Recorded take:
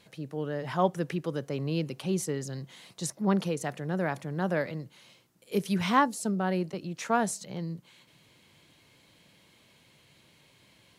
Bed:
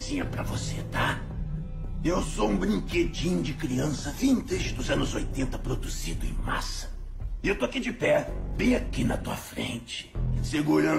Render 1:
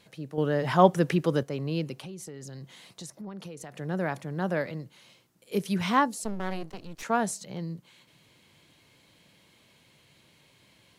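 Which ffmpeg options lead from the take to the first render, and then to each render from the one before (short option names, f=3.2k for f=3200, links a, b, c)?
-filter_complex "[0:a]asettb=1/sr,asplit=3[a][b][c];[a]atrim=end=1.934[d];[b]atrim=start=1.93:end=3.77,asetpts=PTS-STARTPTS,afade=t=in:d=0.004:c=qsin,afade=t=out:st=1.836:d=0.004:c=qsin,acompressor=threshold=-38dB:ratio=6:attack=3.2:release=140:knee=1:detection=peak[e];[c]atrim=start=3.766[f];[d][e]acrossfade=d=0.004:c1=hsin:c2=qsin[g];[g][f]acrossfade=d=0.004:c1=qsin:c2=hsin,asettb=1/sr,asplit=3[h][i][j];[h]atrim=end=6.244[k];[i]atrim=start=6.24:end=7.03,asetpts=PTS-STARTPTS,afade=t=in:d=0.004:c=qsin,afade=t=out:st=0.786:d=0.004:c=qsin,aeval=exprs='max(val(0),0)':c=same[l];[j]atrim=start=7.026[m];[k][l]acrossfade=d=0.004:c1=hsin:c2=qsin[n];[n][m]acrossfade=d=0.004:c1=qsin:c2=hsin,asplit=3[o][p][q];[o]atrim=end=0.382[r];[p]atrim=start=0.378:end=1.432,asetpts=PTS-STARTPTS,volume=7dB[s];[q]atrim=start=1.428[t];[r][s]acrossfade=d=0.004:c1=hsin:c2=hsin[u];[u][t]acrossfade=d=0.004:c1=hsin:c2=hsin"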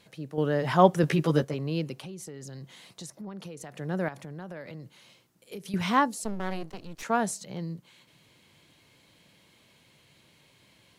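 -filter_complex "[0:a]asettb=1/sr,asplit=3[a][b][c];[a]atrim=end=1.024[d];[b]atrim=start=1.02:end=1.54,asetpts=PTS-STARTPTS,afade=t=in:d=0.004:c=qsin,afade=t=out:st=0.516:d=0.004:c=qsin,asplit=2[e][f];[f]adelay=13,volume=-2.5dB[g];[e][g]amix=inputs=2:normalize=0,atrim=end_sample=22932[h];[c]atrim=start=1.536[i];[d][h]acrossfade=d=0.004:c1=hsin:c2=qsin[j];[j][i]acrossfade=d=0.004:c1=qsin:c2=hsin,asettb=1/sr,asplit=3[k][l][m];[k]atrim=end=4.084[n];[l]atrim=start=4.08:end=5.74,asetpts=PTS-STARTPTS,afade=t=in:d=0.004:c=qsin,afade=t=out:st=1.656:d=0.004:c=qsin,acompressor=threshold=-37dB:ratio=5:attack=3.2:release=140:knee=1:detection=peak[o];[m]atrim=start=5.736[p];[n][o]acrossfade=d=0.004:c1=hsin:c2=qsin[q];[q][p]acrossfade=d=0.004:c1=qsin:c2=hsin"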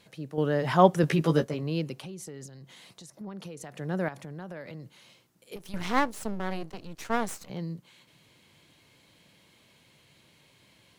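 -filter_complex "[0:a]asettb=1/sr,asplit=3[a][b][c];[a]atrim=end=1.194[d];[b]atrim=start=1.19:end=1.63,asetpts=PTS-STARTPTS,afade=t=in:d=0.004:c=qsin,afade=t=out:st=0.436:d=0.004:c=qsin,asplit=2[e][f];[f]adelay=18,volume=-12dB[g];[e][g]amix=inputs=2:normalize=0,atrim=end_sample=19404[h];[c]atrim=start=1.626[i];[d][h]acrossfade=d=0.004:c1=hsin:c2=qsin[j];[j][i]acrossfade=d=0.004:c1=qsin:c2=hsin,asettb=1/sr,asplit=3[k][l][m];[k]atrim=end=2.464[n];[l]atrim=start=2.46:end=3.21,asetpts=PTS-STARTPTS,afade=t=in:d=0.004:c=qsin,afade=t=out:st=0.746:d=0.004:c=qsin,acompressor=threshold=-47dB:ratio=2.5:attack=3.2:release=140:knee=1:detection=peak[o];[m]atrim=start=3.206[p];[n][o]acrossfade=d=0.004:c1=hsin:c2=qsin[q];[q][p]acrossfade=d=0.004:c1=qsin:c2=hsin,asettb=1/sr,asplit=3[r][s][t];[r]atrim=end=5.564[u];[s]atrim=start=5.56:end=7.5,asetpts=PTS-STARTPTS,afade=t=in:d=0.004:c=qsin,afade=t=out:st=1.936:d=0.004:c=qsin,aeval=exprs='max(val(0),0)':c=same[v];[t]atrim=start=7.496[w];[u][v]acrossfade=d=0.004:c1=hsin:c2=qsin[x];[x][w]acrossfade=d=0.004:c1=qsin:c2=hsin"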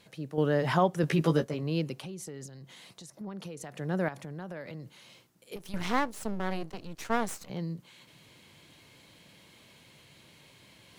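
-af "alimiter=limit=-13dB:level=0:latency=1:release=400,areverse,acompressor=mode=upward:threshold=-50dB:ratio=2.5,areverse"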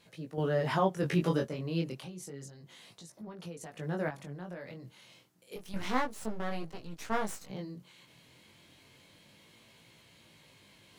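-af "flanger=delay=17.5:depth=6:speed=0.3"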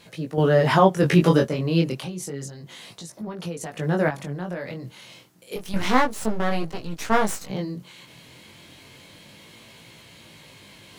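-af "volume=12dB,alimiter=limit=-2dB:level=0:latency=1"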